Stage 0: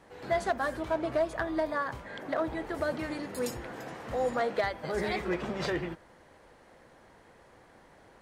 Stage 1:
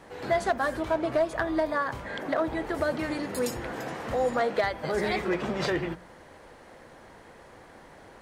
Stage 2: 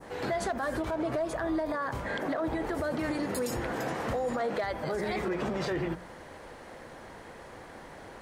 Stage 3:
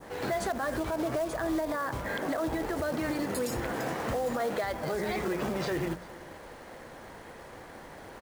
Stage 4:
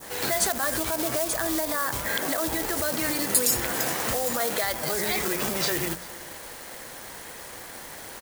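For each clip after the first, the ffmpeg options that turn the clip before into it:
ffmpeg -i in.wav -filter_complex "[0:a]bandreject=frequency=60:width_type=h:width=6,bandreject=frequency=120:width_type=h:width=6,bandreject=frequency=180:width_type=h:width=6,asplit=2[link_01][link_02];[link_02]acompressor=threshold=-38dB:ratio=6,volume=-1dB[link_03];[link_01][link_03]amix=inputs=2:normalize=0,volume=1.5dB" out.wav
ffmpeg -i in.wav -af "adynamicequalizer=threshold=0.00708:dfrequency=3000:dqfactor=0.74:tfrequency=3000:tqfactor=0.74:attack=5:release=100:ratio=0.375:range=2:mode=cutabove:tftype=bell,alimiter=level_in=3dB:limit=-24dB:level=0:latency=1:release=56,volume=-3dB,volume=3.5dB" out.wav
ffmpeg -i in.wav -af "aecho=1:1:398:0.0794,acrusher=bits=4:mode=log:mix=0:aa=0.000001" out.wav
ffmpeg -i in.wav -af "crystalizer=i=7:c=0" out.wav

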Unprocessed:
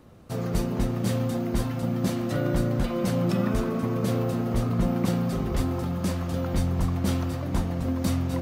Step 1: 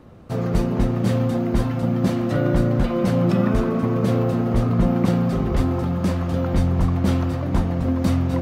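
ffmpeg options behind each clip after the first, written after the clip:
ffmpeg -i in.wav -af "highshelf=frequency=4400:gain=-11.5,volume=6dB" out.wav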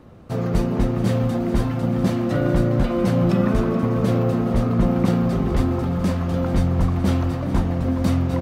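ffmpeg -i in.wav -af "aecho=1:1:427|854|1281|1708|2135|2562:0.178|0.105|0.0619|0.0365|0.0215|0.0127" out.wav

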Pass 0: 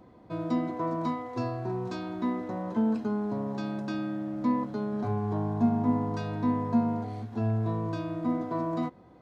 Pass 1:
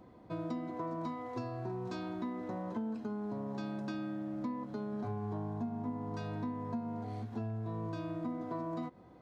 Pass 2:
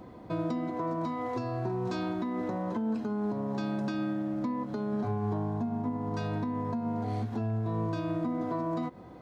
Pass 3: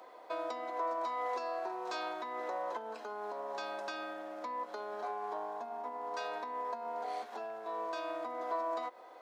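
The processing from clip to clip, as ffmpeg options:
ffmpeg -i in.wav -af "acompressor=threshold=-33dB:ratio=6,volume=-2.5dB" out.wav
ffmpeg -i in.wav -af "alimiter=level_in=9dB:limit=-24dB:level=0:latency=1:release=169,volume=-9dB,volume=9dB" out.wav
ffmpeg -i in.wav -af "highpass=frequency=530:width=0.5412,highpass=frequency=530:width=1.3066,volume=1dB" out.wav

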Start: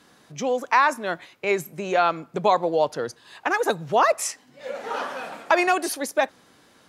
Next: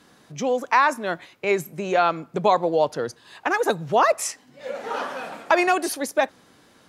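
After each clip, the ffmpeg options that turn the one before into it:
ffmpeg -i in.wav -af "lowshelf=frequency=410:gain=3" out.wav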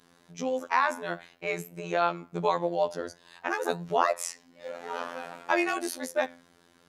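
ffmpeg -i in.wav -af "flanger=delay=6.6:depth=8.4:regen=85:speed=0.52:shape=triangular,afftfilt=real='hypot(re,im)*cos(PI*b)':imag='0':win_size=2048:overlap=0.75,volume=1dB" out.wav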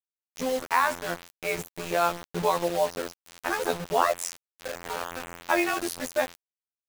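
ffmpeg -i in.wav -af "acrusher=bits=5:mix=0:aa=0.000001,volume=1.5dB" out.wav

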